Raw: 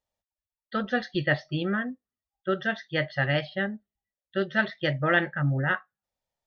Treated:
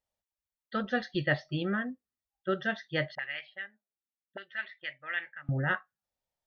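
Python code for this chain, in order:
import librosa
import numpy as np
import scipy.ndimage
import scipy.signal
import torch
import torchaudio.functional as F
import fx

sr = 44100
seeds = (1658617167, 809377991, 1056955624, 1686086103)

y = fx.auto_wah(x, sr, base_hz=220.0, top_hz=2300.0, q=3.0, full_db=-26.0, direction='up', at=(3.15, 5.49))
y = y * 10.0 ** (-3.5 / 20.0)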